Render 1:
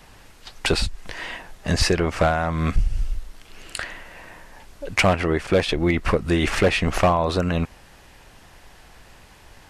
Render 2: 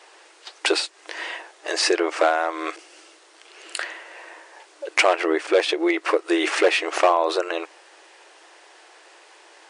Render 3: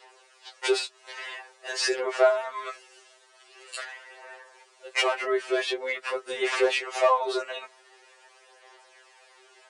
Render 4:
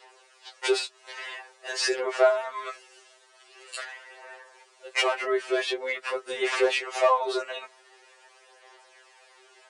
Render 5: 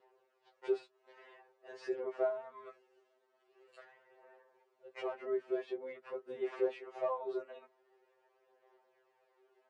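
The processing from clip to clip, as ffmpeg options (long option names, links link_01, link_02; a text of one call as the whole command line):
ffmpeg -i in.wav -af "afftfilt=real='re*between(b*sr/4096,310,10000)':imag='im*between(b*sr/4096,310,10000)':win_size=4096:overlap=0.75,volume=1.5dB" out.wav
ffmpeg -i in.wav -af "aphaser=in_gain=1:out_gain=1:delay=3.2:decay=0.43:speed=0.46:type=sinusoidal,afftfilt=real='re*2.45*eq(mod(b,6),0)':imag='im*2.45*eq(mod(b,6),0)':win_size=2048:overlap=0.75,volume=-4.5dB" out.wav
ffmpeg -i in.wav -af anull out.wav
ffmpeg -i in.wav -af "bandpass=frequency=170:width_type=q:width=1.3:csg=0" out.wav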